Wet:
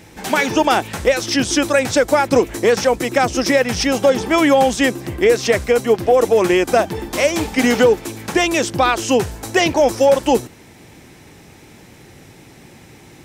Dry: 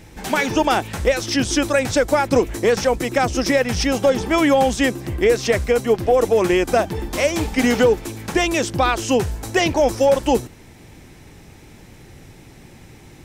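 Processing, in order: high-pass 150 Hz 6 dB/octave; trim +3 dB

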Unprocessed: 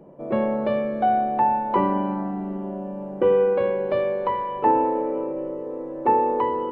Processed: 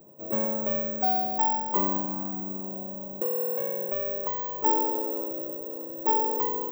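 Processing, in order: 1.99–4.50 s: compression, threshold -21 dBFS, peak gain reduction 6.5 dB; careless resampling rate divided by 2×, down none, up zero stuff; trim -8 dB

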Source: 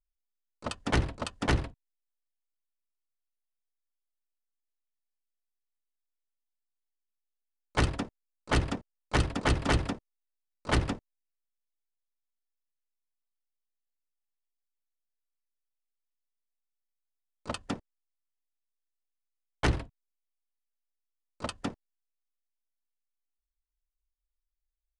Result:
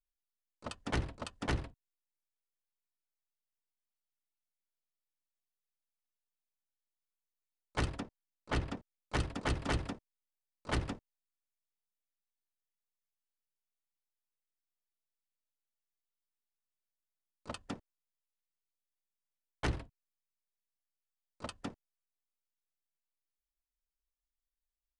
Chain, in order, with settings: 8.00–8.77 s: treble shelf 8.3 kHz -10 dB; trim -7.5 dB

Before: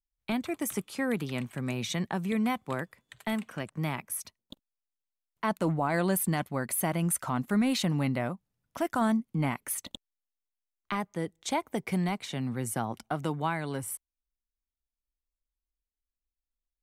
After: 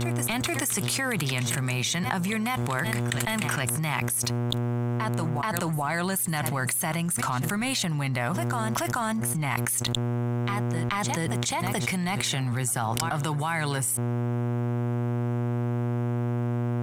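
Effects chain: graphic EQ 250/500/8000 Hz -11/-8/+6 dB; mains buzz 120 Hz, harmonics 14, -52 dBFS -8 dB/octave; waveshaping leveller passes 1; reverse echo 431 ms -22 dB; level flattener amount 100%; trim -7 dB

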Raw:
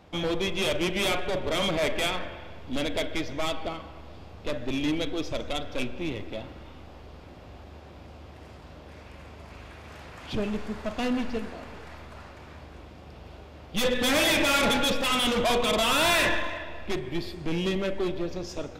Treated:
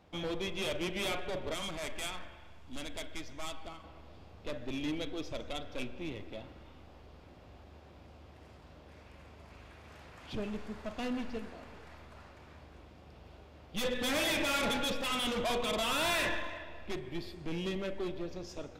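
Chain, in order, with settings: 1.54–3.84 s: graphic EQ 125/250/500/2000/4000/8000 Hz -5/-3/-9/-3/-3/+5 dB; trim -8.5 dB

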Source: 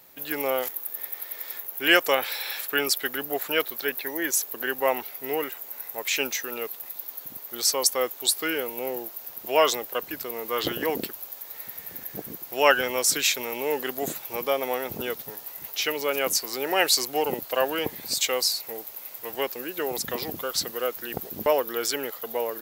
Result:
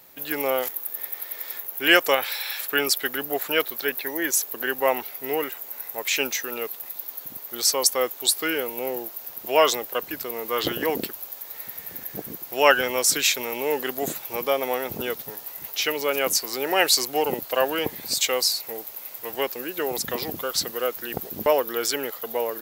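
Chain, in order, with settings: 2.14–2.59 s: peaking EQ 290 Hz -3.5 dB -> -13 dB 1.8 oct; trim +2 dB

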